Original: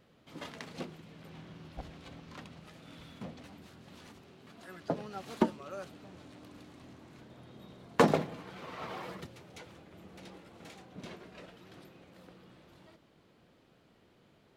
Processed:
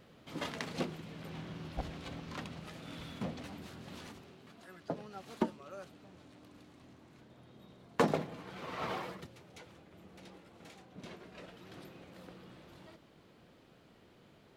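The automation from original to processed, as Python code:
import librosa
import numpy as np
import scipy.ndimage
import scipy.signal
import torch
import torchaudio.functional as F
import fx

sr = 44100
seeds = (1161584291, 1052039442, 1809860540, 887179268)

y = fx.gain(x, sr, db=fx.line((3.97, 5.0), (4.73, -5.0), (8.1, -5.0), (8.91, 4.5), (9.18, -3.5), (10.97, -3.5), (11.86, 3.0)))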